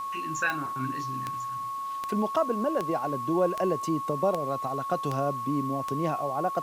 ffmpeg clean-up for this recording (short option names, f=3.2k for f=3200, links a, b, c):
-af "adeclick=t=4,bandreject=f=1.1k:w=30,afwtdn=0.002"